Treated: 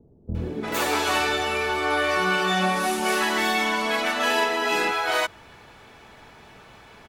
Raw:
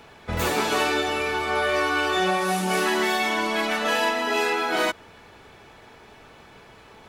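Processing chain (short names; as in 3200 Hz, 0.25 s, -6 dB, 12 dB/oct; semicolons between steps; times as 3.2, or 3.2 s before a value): bands offset in time lows, highs 0.35 s, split 410 Hz; gain +1 dB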